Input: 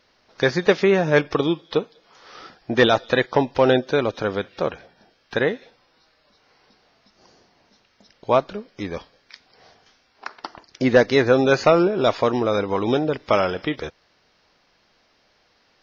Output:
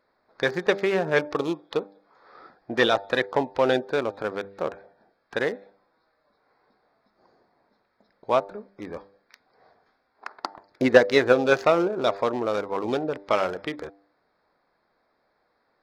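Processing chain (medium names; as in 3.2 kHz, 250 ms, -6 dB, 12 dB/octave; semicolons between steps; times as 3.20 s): local Wiener filter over 15 samples; 10.31–11.59 s: transient shaper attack +7 dB, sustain +1 dB; bass shelf 220 Hz -11 dB; de-hum 99.05 Hz, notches 9; trim -2.5 dB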